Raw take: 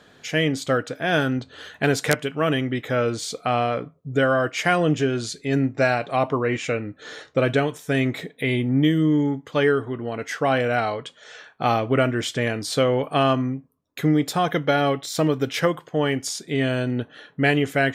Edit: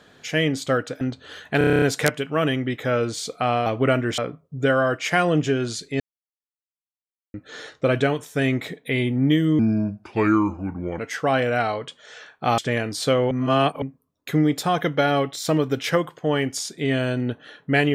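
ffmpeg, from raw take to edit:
-filter_complex "[0:a]asplit=19[s0][s1][s2][s3][s4][s5][s6][s7][s8][s9][s10][s11][s12][s13][s14][s15][s16][s17][s18];[s0]atrim=end=1.012[s19];[s1]atrim=start=1.298:end=1.902[s20];[s2]atrim=start=1.868:end=1.902[s21];[s3]atrim=start=1.868:end=1.902[s22];[s4]atrim=start=1.868:end=1.902[s23];[s5]atrim=start=1.868:end=1.902[s24];[s6]atrim=start=1.868:end=1.902[s25];[s7]atrim=start=1.868:end=1.902[s26];[s8]atrim=start=1.868:end=1.902[s27];[s9]atrim=start=1.868:end=3.712[s28];[s10]atrim=start=11.758:end=12.282[s29];[s11]atrim=start=3.708:end=5.53,asetpts=PTS-STARTPTS,afade=t=out:st=1.818:d=0.004:c=hsin[s30];[s12]atrim=start=5.53:end=6.87,asetpts=PTS-STARTPTS,volume=0[s31];[s13]atrim=start=6.87:end=9.124,asetpts=PTS-STARTPTS,afade=t=in:d=0.004:c=hsin[s32];[s14]atrim=start=9.12:end=10.17,asetpts=PTS-STARTPTS,asetrate=33075,aresample=44100[s33];[s15]atrim=start=10.166:end=11.762[s34];[s16]atrim=start=12.278:end=13.012[s35];[s17]atrim=start=13.008:end=13.522,asetpts=PTS-STARTPTS,areverse[s36];[s18]atrim=start=13.518[s37];[s19][s20]acrossfade=d=0.004:c1=hsin:c2=hsin[s38];[s38][s21]acrossfade=d=0.004:c1=hsin:c2=hsin[s39];[s39][s22]acrossfade=d=0.004:c1=hsin:c2=hsin[s40];[s40][s23]acrossfade=d=0.004:c1=hsin:c2=hsin[s41];[s41][s24]acrossfade=d=0.004:c1=hsin:c2=hsin[s42];[s42][s25]acrossfade=d=0.004:c1=hsin:c2=hsin[s43];[s43][s26]acrossfade=d=0.004:c1=hsin:c2=hsin[s44];[s44][s27]acrossfade=d=0.004:c1=hsin:c2=hsin[s45];[s45][s28]acrossfade=d=0.004:c1=hsin:c2=hsin[s46];[s46][s29]acrossfade=d=0.004:c1=hsin:c2=hsin[s47];[s30][s31][s32]concat=n=3:v=0:a=1[s48];[s47][s48]acrossfade=d=0.004:c1=hsin:c2=hsin[s49];[s49][s33]acrossfade=d=0.004:c1=hsin:c2=hsin[s50];[s50][s34]acrossfade=d=0.004:c1=hsin:c2=hsin[s51];[s51][s35]acrossfade=d=0.004:c1=hsin:c2=hsin[s52];[s52][s36]acrossfade=d=0.004:c1=hsin:c2=hsin[s53];[s53][s37]acrossfade=d=0.004:c1=hsin:c2=hsin"

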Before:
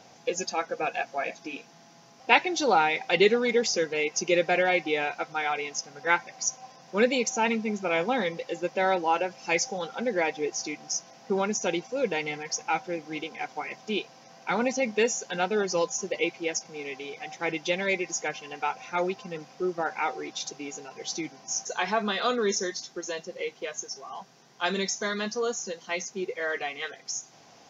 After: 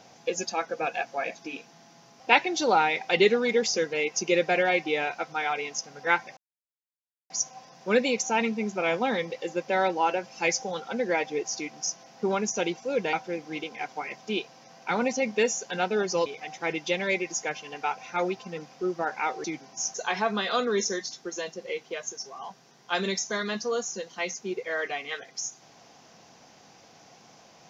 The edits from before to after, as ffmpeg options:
-filter_complex "[0:a]asplit=5[s0][s1][s2][s3][s4];[s0]atrim=end=6.37,asetpts=PTS-STARTPTS,afade=t=out:st=6.366:d=0.004:c=hsin,apad=pad_dur=0.93[s5];[s1]atrim=start=6.37:end=12.202,asetpts=PTS-STARTPTS,afade=t=in:d=0.004:c=hsin[s6];[s2]atrim=start=12.728:end=15.862[s7];[s3]atrim=start=17.048:end=20.232[s8];[s4]atrim=start=21.148[s9];[s5][s6]concat=n=2:v=0:a=1[s10];[s10][s7]acrossfade=d=0.004:c1=hsin:c2=hsin[s11];[s11][s8]acrossfade=d=0.004:c1=hsin:c2=hsin[s12];[s12][s9]acrossfade=d=0.004:c1=hsin:c2=hsin"

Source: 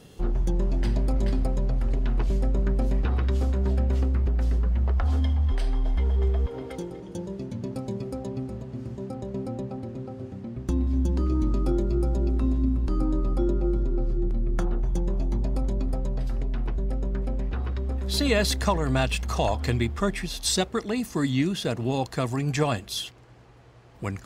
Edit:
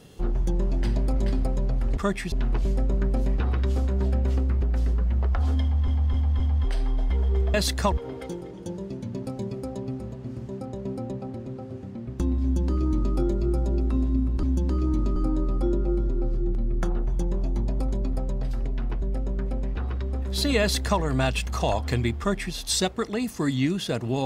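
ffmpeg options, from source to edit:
-filter_complex "[0:a]asplit=10[s0][s1][s2][s3][s4][s5][s6][s7][s8][s9];[s0]atrim=end=1.972[s10];[s1]atrim=start=19.948:end=20.302[s11];[s2]atrim=start=1.968:end=5.532[s12];[s3]atrim=start=5.268:end=5.532[s13];[s4]atrim=start=5.268:end=5.532[s14];[s5]atrim=start=5.268:end=6.412[s15];[s6]atrim=start=18.368:end=18.752[s16];[s7]atrim=start=6.408:end=12.922[s17];[s8]atrim=start=10.908:end=11.642[s18];[s9]atrim=start=12.918[s19];[s10][s11]acrossfade=d=0.004:c1=hsin:c2=hsin[s20];[s20][s12]acrossfade=d=0.004:c1=hsin:c2=hsin[s21];[s21][s13]acrossfade=d=0.004:c1=hsin:c2=hsin[s22];[s22][s14]acrossfade=d=0.004:c1=hsin:c2=hsin[s23];[s23][s15]acrossfade=d=0.004:c1=hsin:c2=hsin[s24];[s24][s16]acrossfade=d=0.004:c1=hsin:c2=hsin[s25];[s25][s17]acrossfade=d=0.004:c1=hsin:c2=hsin[s26];[s26][s18]acrossfade=d=0.004:c1=hsin:c2=hsin[s27];[s27][s19]acrossfade=d=0.004:c1=hsin:c2=hsin"

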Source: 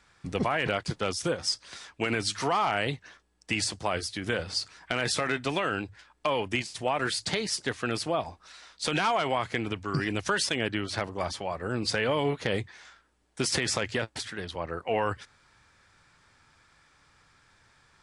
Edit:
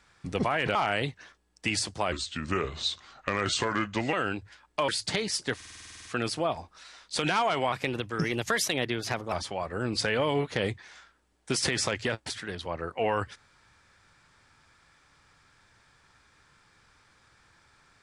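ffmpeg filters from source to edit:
-filter_complex "[0:a]asplit=17[s0][s1][s2][s3][s4][s5][s6][s7][s8][s9][s10][s11][s12][s13][s14][s15][s16];[s0]atrim=end=0.752[s17];[s1]atrim=start=2.598:end=3.974[s18];[s2]atrim=start=3.97:end=5.6,asetpts=PTS-STARTPTS,asetrate=35721,aresample=44100,atrim=end_sample=88744,asetpts=PTS-STARTPTS[s19];[s3]atrim=start=5.596:end=6.352[s20];[s4]atrim=start=7.068:end=7.792[s21];[s5]atrim=start=7.738:end=7.792[s22];[s6]atrim=start=7.738:end=7.792[s23];[s7]atrim=start=7.738:end=7.792[s24];[s8]atrim=start=7.738:end=7.792[s25];[s9]atrim=start=7.738:end=7.792[s26];[s10]atrim=start=7.738:end=7.792[s27];[s11]atrim=start=7.738:end=7.792[s28];[s12]atrim=start=7.738:end=7.792[s29];[s13]atrim=start=7.738:end=7.792[s30];[s14]atrim=start=7.738:end=9.414[s31];[s15]atrim=start=9.41:end=11.22,asetpts=PTS-STARTPTS,asetrate=49833,aresample=44100,atrim=end_sample=70638,asetpts=PTS-STARTPTS[s32];[s16]atrim=start=11.216[s33];[s17][s18]acrossfade=d=0.004:c1=hsin:c2=hsin[s34];[s34][s19]acrossfade=d=0.004:c1=hsin:c2=hsin[s35];[s35][s20]acrossfade=d=0.004:c1=hsin:c2=hsin[s36];[s36][s21]acrossfade=d=0.004:c1=hsin:c2=hsin[s37];[s37][s22]acrossfade=d=0.004:c1=hsin:c2=hsin[s38];[s38][s23]acrossfade=d=0.004:c1=hsin:c2=hsin[s39];[s39][s24]acrossfade=d=0.004:c1=hsin:c2=hsin[s40];[s40][s25]acrossfade=d=0.004:c1=hsin:c2=hsin[s41];[s41][s26]acrossfade=d=0.004:c1=hsin:c2=hsin[s42];[s42][s27]acrossfade=d=0.004:c1=hsin:c2=hsin[s43];[s43][s28]acrossfade=d=0.004:c1=hsin:c2=hsin[s44];[s44][s29]acrossfade=d=0.004:c1=hsin:c2=hsin[s45];[s45][s30]acrossfade=d=0.004:c1=hsin:c2=hsin[s46];[s46][s31]acrossfade=d=0.004:c1=hsin:c2=hsin[s47];[s47][s32]acrossfade=d=0.004:c1=hsin:c2=hsin[s48];[s48][s33]acrossfade=d=0.004:c1=hsin:c2=hsin"

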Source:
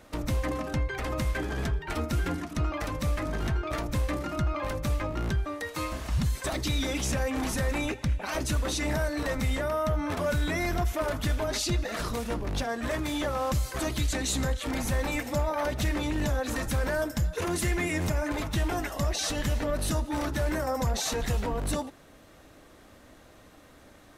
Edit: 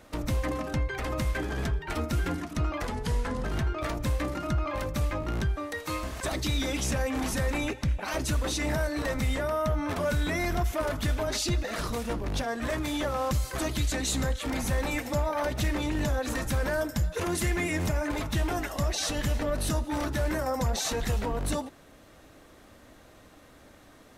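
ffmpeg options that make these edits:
-filter_complex "[0:a]asplit=4[s0][s1][s2][s3];[s0]atrim=end=2.834[s4];[s1]atrim=start=2.83:end=3.34,asetpts=PTS-STARTPTS,asetrate=36162,aresample=44100,atrim=end_sample=27428,asetpts=PTS-STARTPTS[s5];[s2]atrim=start=3.336:end=6.092[s6];[s3]atrim=start=6.408[s7];[s4][s5]acrossfade=d=0.004:c1=hsin:c2=hsin[s8];[s8][s6]acrossfade=d=0.004:c1=hsin:c2=hsin[s9];[s9][s7]acrossfade=d=0.004:c1=hsin:c2=hsin"

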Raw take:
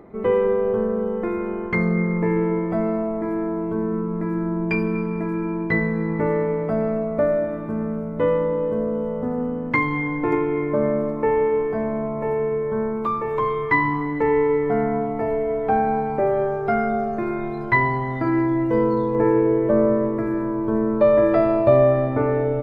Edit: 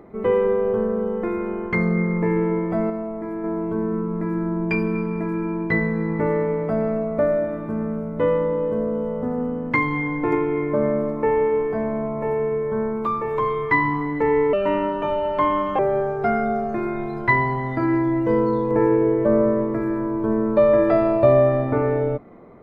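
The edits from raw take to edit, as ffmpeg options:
-filter_complex "[0:a]asplit=5[s0][s1][s2][s3][s4];[s0]atrim=end=2.902[s5];[s1]atrim=start=2.898:end=3.442,asetpts=PTS-STARTPTS,volume=0.596[s6];[s2]atrim=start=3.438:end=14.534[s7];[s3]atrim=start=14.53:end=16.23,asetpts=PTS-STARTPTS,asetrate=59535,aresample=44100,atrim=end_sample=55533,asetpts=PTS-STARTPTS[s8];[s4]atrim=start=16.226[s9];[s5][s6]acrossfade=d=0.004:c1=hsin:c2=hsin[s10];[s10][s7]acrossfade=d=0.004:c1=hsin:c2=hsin[s11];[s11][s8]acrossfade=d=0.004:c1=hsin:c2=hsin[s12];[s12][s9]acrossfade=d=0.004:c1=hsin:c2=hsin"

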